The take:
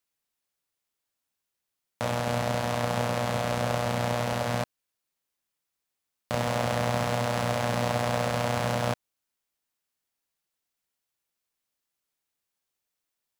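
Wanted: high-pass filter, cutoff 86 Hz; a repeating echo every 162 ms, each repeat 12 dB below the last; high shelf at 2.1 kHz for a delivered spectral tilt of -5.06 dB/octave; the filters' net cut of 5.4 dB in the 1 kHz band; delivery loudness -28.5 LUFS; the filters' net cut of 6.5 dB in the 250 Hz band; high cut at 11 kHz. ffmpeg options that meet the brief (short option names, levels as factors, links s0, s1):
-af "highpass=86,lowpass=11000,equalizer=f=250:t=o:g=-7.5,equalizer=f=1000:t=o:g=-6,highshelf=f=2100:g=-5,aecho=1:1:162|324|486:0.251|0.0628|0.0157,volume=1.58"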